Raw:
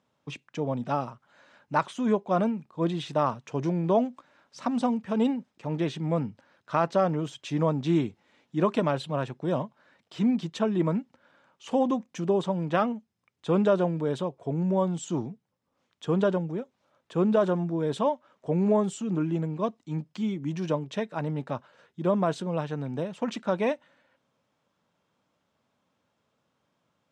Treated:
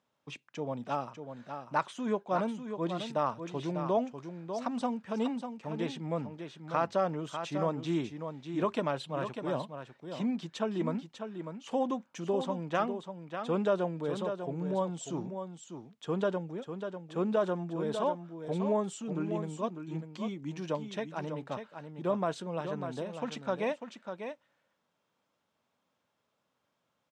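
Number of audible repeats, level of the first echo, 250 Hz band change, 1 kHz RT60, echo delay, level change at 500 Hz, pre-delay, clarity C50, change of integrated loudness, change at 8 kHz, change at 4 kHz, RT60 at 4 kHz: 1, -8.0 dB, -7.5 dB, none, 0.596 s, -5.0 dB, none, none, -6.5 dB, -3.5 dB, -3.5 dB, none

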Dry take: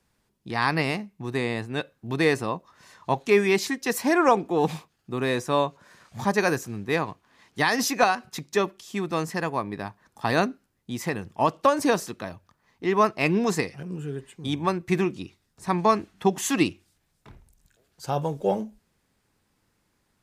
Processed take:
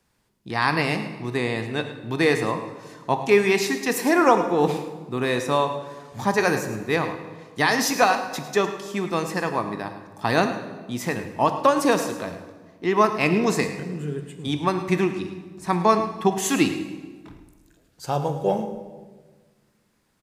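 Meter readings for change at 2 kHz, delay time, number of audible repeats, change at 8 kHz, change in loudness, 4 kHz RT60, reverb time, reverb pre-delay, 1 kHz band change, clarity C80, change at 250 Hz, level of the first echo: +2.5 dB, 0.107 s, 1, +2.5 dB, +2.5 dB, 1.1 s, 1.4 s, 17 ms, +2.5 dB, 9.0 dB, +2.5 dB, -13.0 dB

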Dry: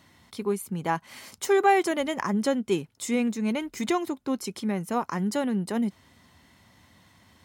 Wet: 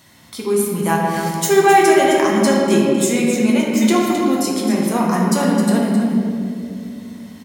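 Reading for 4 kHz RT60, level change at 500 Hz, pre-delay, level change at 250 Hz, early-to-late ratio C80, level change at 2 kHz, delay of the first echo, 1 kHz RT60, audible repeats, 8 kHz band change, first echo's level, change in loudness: 1.2 s, +11.5 dB, 5 ms, +12.5 dB, 0.5 dB, +11.0 dB, 0.263 s, 1.9 s, 1, +14.5 dB, -9.5 dB, +11.5 dB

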